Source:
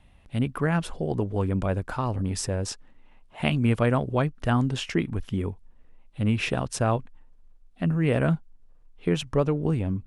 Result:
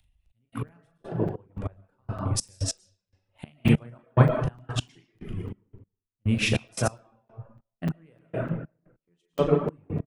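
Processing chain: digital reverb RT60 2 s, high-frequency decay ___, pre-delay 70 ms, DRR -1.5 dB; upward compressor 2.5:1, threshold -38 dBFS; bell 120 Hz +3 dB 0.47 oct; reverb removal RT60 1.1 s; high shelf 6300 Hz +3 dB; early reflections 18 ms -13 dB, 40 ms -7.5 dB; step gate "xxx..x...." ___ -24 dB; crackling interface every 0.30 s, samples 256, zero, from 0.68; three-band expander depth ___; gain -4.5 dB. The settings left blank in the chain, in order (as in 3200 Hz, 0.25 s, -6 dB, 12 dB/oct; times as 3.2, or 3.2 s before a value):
0.6×, 144 bpm, 100%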